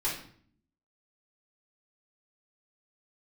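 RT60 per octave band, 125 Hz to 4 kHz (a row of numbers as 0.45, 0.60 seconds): 0.90, 0.90, 0.60, 0.55, 0.50, 0.45 seconds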